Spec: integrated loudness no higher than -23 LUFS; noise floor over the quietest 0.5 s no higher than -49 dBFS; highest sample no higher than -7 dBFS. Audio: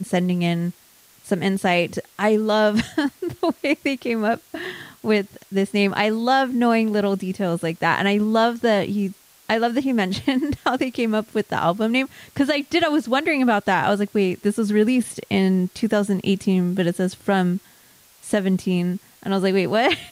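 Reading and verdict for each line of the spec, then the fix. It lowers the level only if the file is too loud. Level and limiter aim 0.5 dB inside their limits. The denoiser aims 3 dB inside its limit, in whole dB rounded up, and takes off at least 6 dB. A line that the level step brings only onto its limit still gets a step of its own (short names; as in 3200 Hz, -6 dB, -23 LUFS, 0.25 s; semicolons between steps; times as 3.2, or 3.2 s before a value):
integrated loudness -21.5 LUFS: fail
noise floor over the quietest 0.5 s -53 dBFS: OK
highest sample -6.0 dBFS: fail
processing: gain -2 dB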